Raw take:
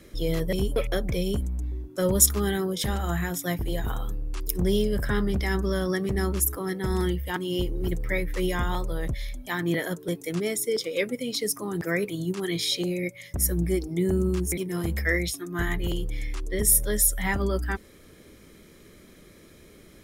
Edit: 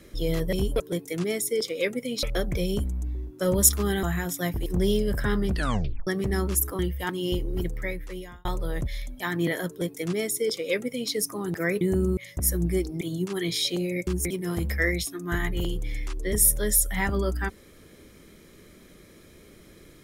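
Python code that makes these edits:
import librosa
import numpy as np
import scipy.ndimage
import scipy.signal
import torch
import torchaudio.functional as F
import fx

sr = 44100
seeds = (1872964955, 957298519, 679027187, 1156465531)

y = fx.edit(x, sr, fx.cut(start_s=2.6, length_s=0.48),
    fx.cut(start_s=3.71, length_s=0.8),
    fx.tape_stop(start_s=5.35, length_s=0.57),
    fx.cut(start_s=6.64, length_s=0.42),
    fx.fade_out_span(start_s=7.78, length_s=0.94),
    fx.duplicate(start_s=9.96, length_s=1.43, to_s=0.8),
    fx.swap(start_s=12.08, length_s=1.06, other_s=13.98, other_length_s=0.36), tone=tone)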